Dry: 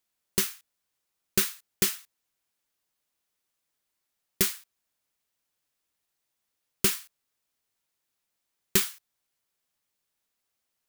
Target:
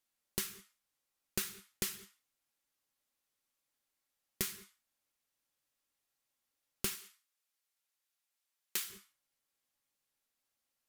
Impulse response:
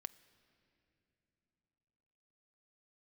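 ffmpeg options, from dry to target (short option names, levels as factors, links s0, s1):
-filter_complex "[1:a]atrim=start_sample=2205,afade=t=out:st=0.19:d=0.01,atrim=end_sample=8820,asetrate=29106,aresample=44100[s0];[0:a][s0]afir=irnorm=-1:irlink=0,acompressor=threshold=0.0158:ratio=2,asettb=1/sr,asplit=3[s1][s2][s3];[s1]atrim=end=6.954[s4];[s2]atrim=start=6.95:end=8.9,asetpts=PTS-STARTPTS,afade=t=in:d=0.004:c=qsin,afade=t=out:st=1.946:d=0.004:c=qsin,highpass=f=1100:p=1[s5];[s3]atrim=start=8.896[s6];[s4][s5]acrossfade=d=0.004:c1=hsin:c2=qsin[s7];[s7][s6]acrossfade=d=0.004:c1=qsin:c2=hsin,volume=0.841"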